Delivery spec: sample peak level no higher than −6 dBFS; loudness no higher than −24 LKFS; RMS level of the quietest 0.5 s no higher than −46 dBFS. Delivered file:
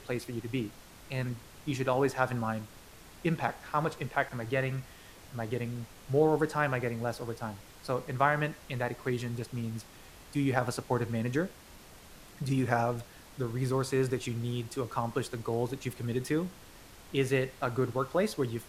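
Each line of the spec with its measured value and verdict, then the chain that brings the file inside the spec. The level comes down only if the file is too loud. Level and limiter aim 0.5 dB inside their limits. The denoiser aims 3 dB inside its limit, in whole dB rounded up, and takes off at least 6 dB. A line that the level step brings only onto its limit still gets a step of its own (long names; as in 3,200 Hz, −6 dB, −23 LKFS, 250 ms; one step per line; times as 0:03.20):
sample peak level −11.0 dBFS: in spec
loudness −32.5 LKFS: in spec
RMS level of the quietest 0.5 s −52 dBFS: in spec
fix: no processing needed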